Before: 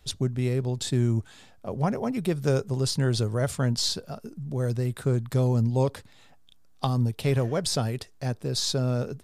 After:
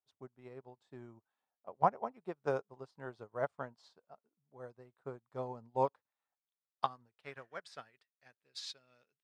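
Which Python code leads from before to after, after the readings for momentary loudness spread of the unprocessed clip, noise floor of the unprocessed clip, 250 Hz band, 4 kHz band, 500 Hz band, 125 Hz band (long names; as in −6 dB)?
8 LU, −54 dBFS, −22.0 dB, −21.0 dB, −11.5 dB, −27.5 dB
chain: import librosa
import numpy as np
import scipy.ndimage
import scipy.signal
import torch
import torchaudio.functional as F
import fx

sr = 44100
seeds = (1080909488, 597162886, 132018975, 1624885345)

y = fx.filter_sweep_bandpass(x, sr, from_hz=920.0, to_hz=2700.0, start_s=5.7, end_s=9.18, q=1.7)
y = fx.upward_expand(y, sr, threshold_db=-51.0, expansion=2.5)
y = F.gain(torch.from_numpy(y), 6.0).numpy()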